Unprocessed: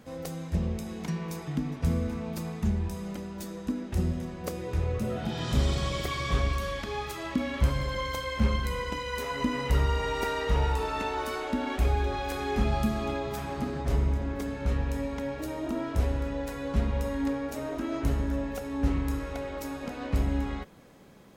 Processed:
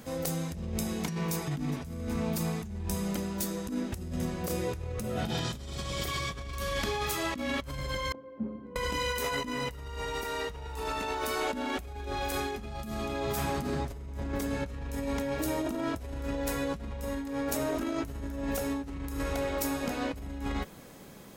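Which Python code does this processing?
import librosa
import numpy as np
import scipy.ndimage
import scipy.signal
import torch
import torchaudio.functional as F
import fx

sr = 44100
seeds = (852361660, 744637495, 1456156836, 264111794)

y = fx.ladder_bandpass(x, sr, hz=300.0, resonance_pct=45, at=(8.12, 8.76))
y = fx.high_shelf(y, sr, hz=5900.0, db=10.5)
y = fx.over_compress(y, sr, threshold_db=-34.0, ratio=-1.0)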